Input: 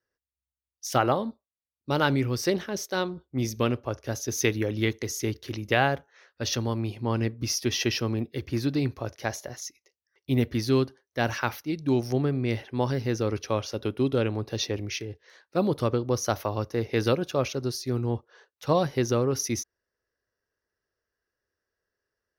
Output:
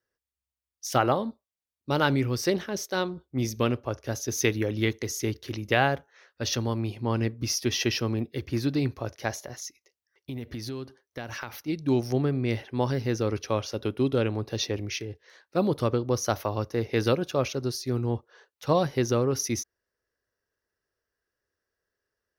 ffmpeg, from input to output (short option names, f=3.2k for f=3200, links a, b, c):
-filter_complex "[0:a]asettb=1/sr,asplit=3[a][b][c];[a]atrim=end=9.334[d];[b]atrim=start=9.33:end=11.68,asetpts=PTS-STARTPTS,afade=t=in:d=0.004:c=qsin,afade=t=out:st=2.346:d=0.004:c=qsin,acompressor=threshold=-32dB:ratio=6:attack=3.2:release=140:knee=1:detection=peak[e];[c]atrim=start=11.676[f];[d][e]acrossfade=d=0.004:c1=hsin:c2=qsin[g];[g][f]acrossfade=d=0.004:c1=qsin:c2=hsin"